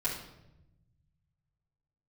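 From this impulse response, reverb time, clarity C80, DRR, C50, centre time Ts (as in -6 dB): 0.90 s, 8.0 dB, -8.5 dB, 4.5 dB, 36 ms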